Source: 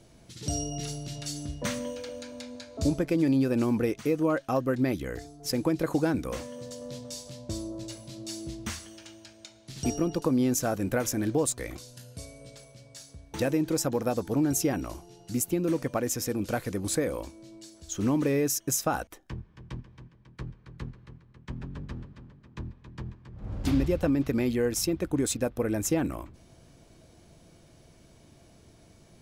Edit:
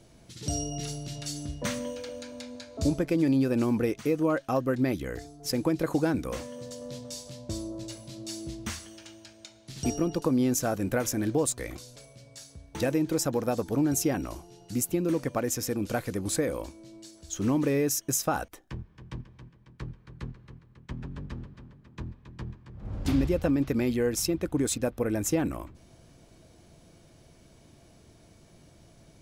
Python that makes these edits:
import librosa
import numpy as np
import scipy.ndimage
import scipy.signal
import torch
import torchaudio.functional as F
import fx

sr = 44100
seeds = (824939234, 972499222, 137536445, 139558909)

y = fx.edit(x, sr, fx.cut(start_s=11.96, length_s=0.59), tone=tone)